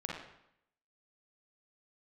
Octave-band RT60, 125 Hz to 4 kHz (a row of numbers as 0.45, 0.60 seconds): 0.80, 0.80, 0.75, 0.75, 0.75, 0.65 seconds